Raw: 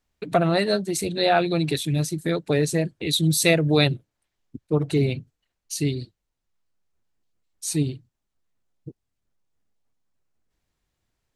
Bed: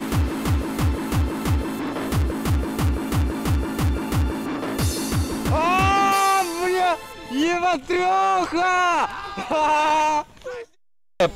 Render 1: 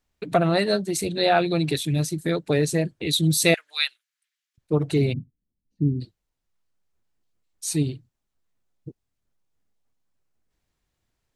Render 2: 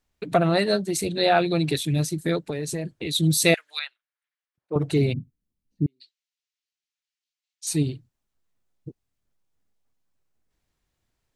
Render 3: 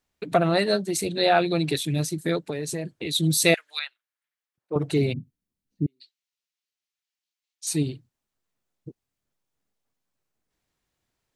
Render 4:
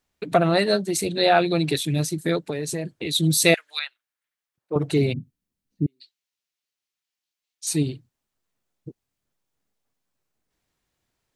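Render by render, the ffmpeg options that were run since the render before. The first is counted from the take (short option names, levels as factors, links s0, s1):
-filter_complex "[0:a]asettb=1/sr,asplit=3[s0][s1][s2];[s0]atrim=end=3.544[s3];[s1]atrim=start=3.54:end=4.58,asetpts=PTS-STARTPTS,afade=t=in:d=0.004:c=qsin,afade=t=out:st=1.036:d=0.004:c=qsin,highpass=f=1500:w=0.5412,highpass=f=1500:w=1.3066[s4];[s2]atrim=start=4.576[s5];[s3][s4]acrossfade=d=0.004:c1=hsin:c2=qsin[s6];[s6][s5]acrossfade=d=0.004:c1=qsin:c2=hsin,asplit=3[s7][s8][s9];[s7]afade=t=out:st=5.12:d=0.02[s10];[s8]lowpass=f=230:t=q:w=1.9,afade=t=in:st=5.12:d=0.02,afade=t=out:st=6:d=0.02[s11];[s9]afade=t=in:st=6:d=0.02[s12];[s10][s11][s12]amix=inputs=3:normalize=0"
-filter_complex "[0:a]asplit=3[s0][s1][s2];[s0]afade=t=out:st=2.42:d=0.02[s3];[s1]acompressor=threshold=0.0562:ratio=6:attack=3.2:release=140:knee=1:detection=peak,afade=t=in:st=2.42:d=0.02,afade=t=out:st=3.14:d=0.02[s4];[s2]afade=t=in:st=3.14:d=0.02[s5];[s3][s4][s5]amix=inputs=3:normalize=0,asettb=1/sr,asplit=3[s6][s7][s8];[s6]atrim=end=3.794[s9];[s7]atrim=start=3.79:end=4.76,asetpts=PTS-STARTPTS,afade=t=in:d=0.004:c=qsin,afade=t=out:st=0.966:d=0.004:c=qsin,bandpass=f=870:t=q:w=0.98[s10];[s8]atrim=start=4.756[s11];[s9][s10]acrossfade=d=0.004:c1=hsin:c2=qsin[s12];[s12][s11]acrossfade=d=0.004:c1=qsin:c2=hsin,asettb=1/sr,asplit=3[s13][s14][s15];[s13]atrim=end=5.864[s16];[s14]atrim=start=5.86:end=7.67,asetpts=PTS-STARTPTS,afade=t=in:d=0.004:c=qsin,afade=t=out:st=1.806:d=0.004:c=qsin,asuperpass=centerf=4000:order=4:qfactor=0.82[s17];[s15]atrim=start=7.666[s18];[s16][s17]acrossfade=d=0.004:c1=hsin:c2=qsin[s19];[s19][s18]acrossfade=d=0.004:c1=qsin:c2=hsin"
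-af "lowshelf=f=84:g=-10.5"
-af "volume=1.26"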